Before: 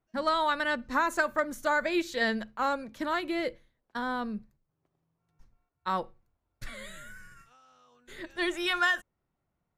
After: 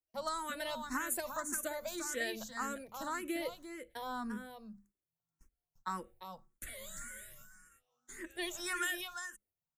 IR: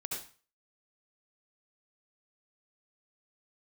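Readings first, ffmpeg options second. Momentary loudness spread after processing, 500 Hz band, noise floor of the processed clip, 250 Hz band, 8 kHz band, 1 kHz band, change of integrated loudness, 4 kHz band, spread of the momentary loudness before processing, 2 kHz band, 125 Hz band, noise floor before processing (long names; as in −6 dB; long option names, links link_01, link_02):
15 LU, −10.0 dB, below −85 dBFS, −9.0 dB, +7.0 dB, −10.5 dB, −10.0 dB, −8.0 dB, 17 LU, −10.5 dB, −8.0 dB, −82 dBFS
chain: -filter_complex "[0:a]bandreject=frequency=50:width_type=h:width=6,bandreject=frequency=100:width_type=h:width=6,bandreject=frequency=150:width_type=h:width=6,bandreject=frequency=200:width_type=h:width=6,agate=range=-14dB:threshold=-55dB:ratio=16:detection=peak,acrossover=split=180|3000[link_01][link_02][link_03];[link_02]acompressor=threshold=-30dB:ratio=6[link_04];[link_01][link_04][link_03]amix=inputs=3:normalize=0,aexciter=amount=6:drive=3.5:freq=6100,aecho=1:1:347:0.422,asplit=2[link_05][link_06];[link_06]afreqshift=1.8[link_07];[link_05][link_07]amix=inputs=2:normalize=1,volume=-3.5dB"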